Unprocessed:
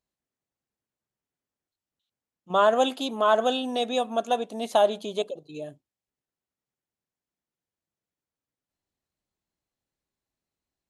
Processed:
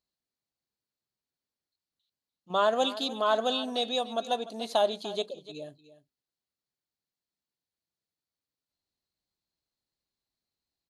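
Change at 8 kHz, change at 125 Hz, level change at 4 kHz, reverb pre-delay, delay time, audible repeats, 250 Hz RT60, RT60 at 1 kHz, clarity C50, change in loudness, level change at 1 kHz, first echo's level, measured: −3.5 dB, −5.0 dB, +1.0 dB, no reverb audible, 296 ms, 1, no reverb audible, no reverb audible, no reverb audible, −4.0 dB, −5.0 dB, −15.5 dB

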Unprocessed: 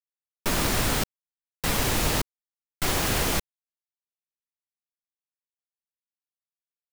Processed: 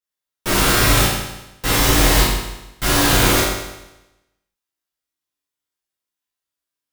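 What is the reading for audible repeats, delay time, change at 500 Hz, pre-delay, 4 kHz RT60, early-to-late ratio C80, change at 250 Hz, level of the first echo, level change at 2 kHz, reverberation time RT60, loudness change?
no echo audible, no echo audible, +9.5 dB, 8 ms, 0.95 s, 3.0 dB, +10.0 dB, no echo audible, +11.0 dB, 0.95 s, +10.0 dB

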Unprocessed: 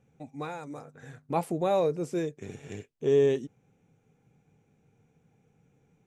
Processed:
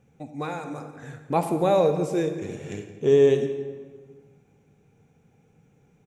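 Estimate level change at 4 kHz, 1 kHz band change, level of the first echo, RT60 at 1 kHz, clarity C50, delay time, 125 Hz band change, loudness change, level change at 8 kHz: +5.5 dB, +5.5 dB, −17.5 dB, 1.5 s, 8.0 dB, 168 ms, +6.0 dB, +5.0 dB, can't be measured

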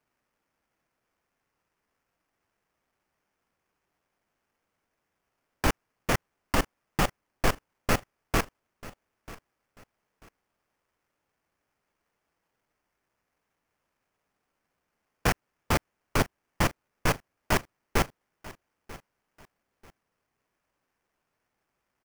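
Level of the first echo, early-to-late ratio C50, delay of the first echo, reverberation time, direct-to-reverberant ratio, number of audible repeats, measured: −19.0 dB, no reverb audible, 940 ms, no reverb audible, no reverb audible, 2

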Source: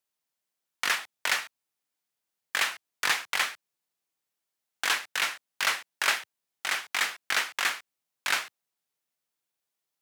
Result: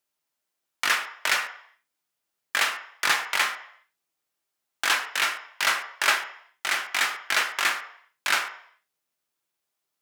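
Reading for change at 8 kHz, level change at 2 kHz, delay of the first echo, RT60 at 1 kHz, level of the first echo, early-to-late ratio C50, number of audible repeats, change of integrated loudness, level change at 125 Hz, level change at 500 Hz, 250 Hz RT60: +2.5 dB, +4.0 dB, no echo audible, 0.65 s, no echo audible, 10.0 dB, no echo audible, +3.5 dB, can't be measured, +4.5 dB, 0.45 s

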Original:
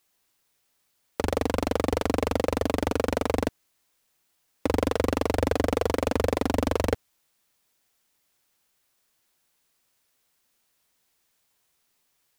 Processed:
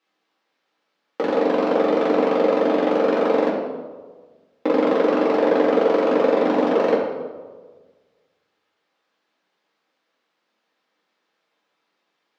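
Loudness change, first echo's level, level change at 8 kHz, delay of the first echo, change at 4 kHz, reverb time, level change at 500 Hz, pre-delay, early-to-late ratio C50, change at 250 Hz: +7.5 dB, no echo audible, below −10 dB, no echo audible, +0.5 dB, 1.5 s, +9.0 dB, 4 ms, 3.0 dB, +7.0 dB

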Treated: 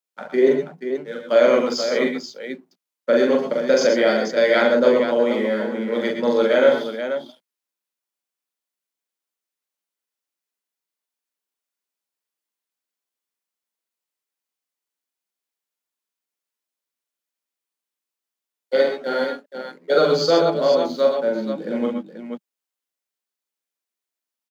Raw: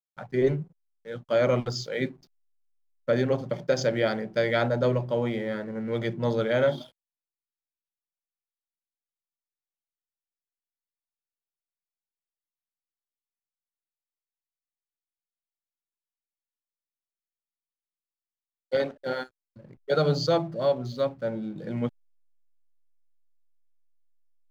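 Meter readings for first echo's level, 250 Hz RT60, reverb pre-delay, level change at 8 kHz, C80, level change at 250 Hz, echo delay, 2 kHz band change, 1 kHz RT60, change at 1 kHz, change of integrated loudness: −2.5 dB, no reverb audible, no reverb audible, can't be measured, no reverb audible, +7.5 dB, 42 ms, +8.5 dB, no reverb audible, +8.0 dB, +8.0 dB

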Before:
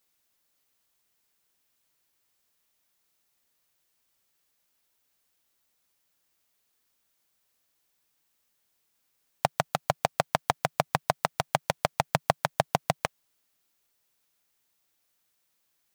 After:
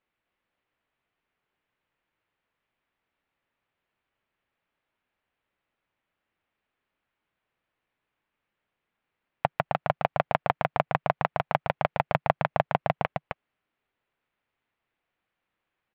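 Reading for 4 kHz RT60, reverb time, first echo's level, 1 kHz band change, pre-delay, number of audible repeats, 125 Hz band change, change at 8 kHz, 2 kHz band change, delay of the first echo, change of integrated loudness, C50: no reverb audible, no reverb audible, −4.5 dB, +1.0 dB, no reverb audible, 1, +1.5 dB, below −30 dB, +0.5 dB, 262 ms, +0.5 dB, no reverb audible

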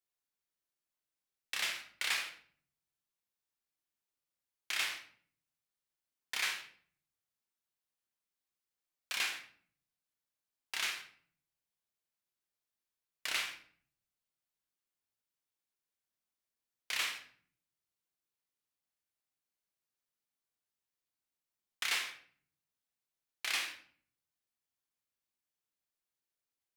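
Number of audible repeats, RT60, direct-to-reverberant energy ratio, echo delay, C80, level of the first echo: no echo audible, 0.50 s, 3.5 dB, no echo audible, 12.5 dB, no echo audible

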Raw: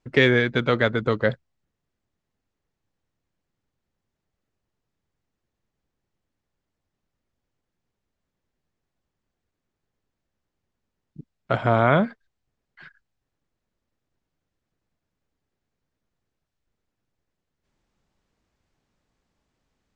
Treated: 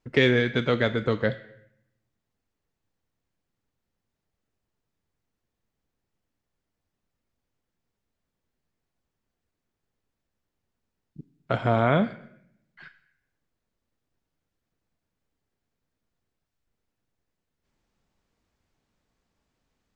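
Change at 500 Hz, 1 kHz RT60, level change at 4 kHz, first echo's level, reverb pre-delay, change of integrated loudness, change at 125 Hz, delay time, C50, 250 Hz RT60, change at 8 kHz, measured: −2.5 dB, 0.70 s, −1.5 dB, no echo audible, 4 ms, −2.5 dB, −2.0 dB, no echo audible, 14.0 dB, 1.0 s, can't be measured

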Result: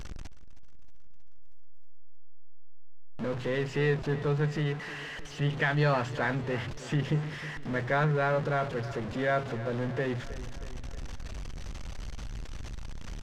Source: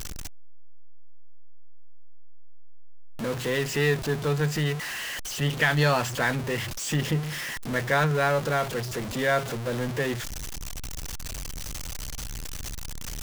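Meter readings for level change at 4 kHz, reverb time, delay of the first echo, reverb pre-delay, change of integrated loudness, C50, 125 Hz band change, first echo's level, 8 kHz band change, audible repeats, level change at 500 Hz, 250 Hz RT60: −9.5 dB, no reverb audible, 316 ms, no reverb audible, −3.0 dB, no reverb audible, −2.5 dB, −15.5 dB, −17.0 dB, 5, −3.0 dB, no reverb audible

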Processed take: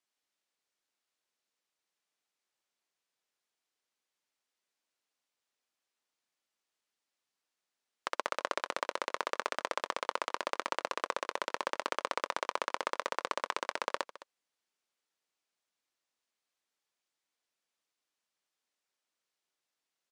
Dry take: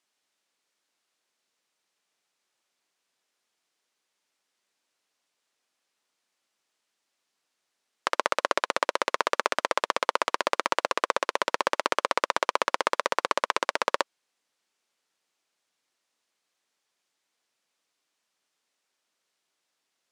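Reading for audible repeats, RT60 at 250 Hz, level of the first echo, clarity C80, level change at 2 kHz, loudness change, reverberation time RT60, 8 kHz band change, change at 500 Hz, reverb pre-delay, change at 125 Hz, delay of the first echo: 1, no reverb audible, −17.0 dB, no reverb audible, −9.0 dB, −9.0 dB, no reverb audible, −9.0 dB, −9.0 dB, no reverb audible, can't be measured, 212 ms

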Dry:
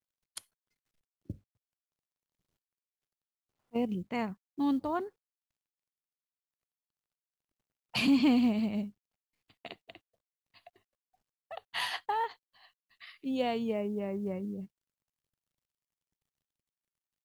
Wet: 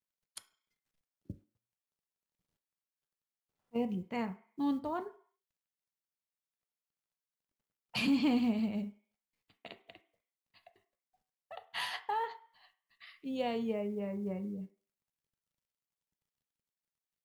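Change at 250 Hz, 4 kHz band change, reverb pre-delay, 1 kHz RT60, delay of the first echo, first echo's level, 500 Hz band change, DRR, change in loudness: −3.5 dB, −4.0 dB, 3 ms, 0.50 s, no echo audible, no echo audible, −3.0 dB, 7.5 dB, −3.5 dB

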